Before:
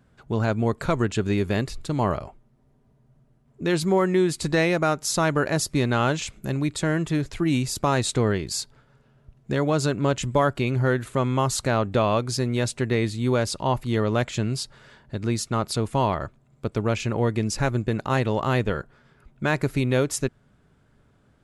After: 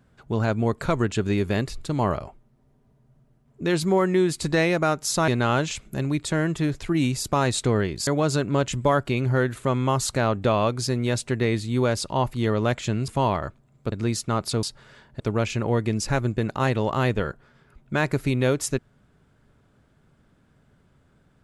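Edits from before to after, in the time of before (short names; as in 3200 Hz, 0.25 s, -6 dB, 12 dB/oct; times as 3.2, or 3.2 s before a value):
5.28–5.79 cut
8.58–9.57 cut
14.58–15.15 swap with 15.86–16.7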